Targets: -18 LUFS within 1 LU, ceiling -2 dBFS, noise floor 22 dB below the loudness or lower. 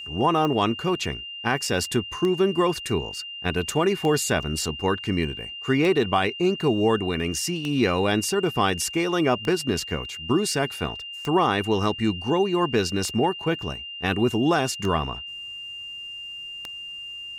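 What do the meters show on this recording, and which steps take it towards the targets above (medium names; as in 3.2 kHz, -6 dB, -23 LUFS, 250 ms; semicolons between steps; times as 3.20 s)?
clicks found 10; steady tone 2.8 kHz; tone level -34 dBFS; loudness -24.5 LUFS; peak level -9.5 dBFS; loudness target -18.0 LUFS
-> de-click; band-stop 2.8 kHz, Q 30; trim +6.5 dB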